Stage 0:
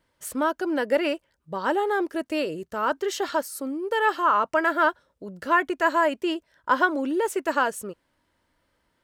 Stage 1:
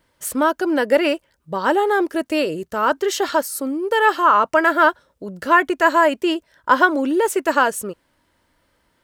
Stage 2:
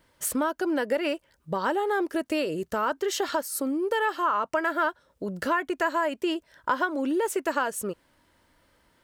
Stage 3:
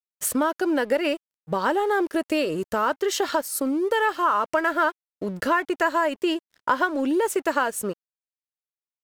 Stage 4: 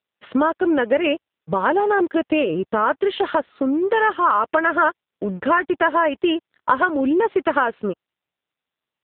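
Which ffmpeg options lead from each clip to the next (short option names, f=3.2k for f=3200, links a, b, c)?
-af "highshelf=f=7.9k:g=3.5,volume=6.5dB"
-af "acompressor=threshold=-26dB:ratio=3"
-af "aeval=exprs='sgn(val(0))*max(abs(val(0))-0.00316,0)':c=same,volume=4dB"
-af "volume=5dB" -ar 8000 -c:a libopencore_amrnb -b:a 6700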